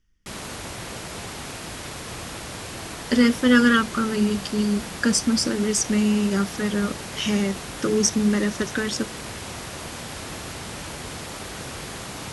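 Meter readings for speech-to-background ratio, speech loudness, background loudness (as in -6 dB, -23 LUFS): 12.0 dB, -22.0 LUFS, -34.0 LUFS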